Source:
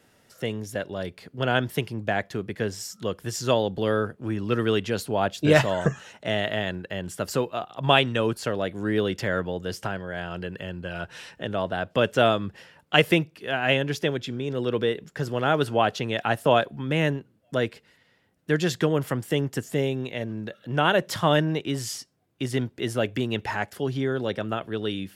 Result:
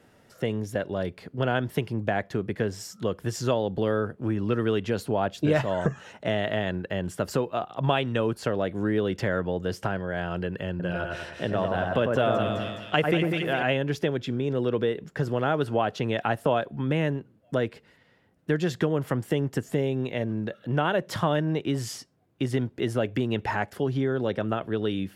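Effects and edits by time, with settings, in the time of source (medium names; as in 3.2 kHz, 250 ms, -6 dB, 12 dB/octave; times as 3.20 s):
10.70–13.63 s: two-band feedback delay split 2 kHz, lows 96 ms, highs 209 ms, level -3.5 dB
whole clip: treble shelf 2.3 kHz -9 dB; compression 2.5:1, threshold -27 dBFS; trim +4 dB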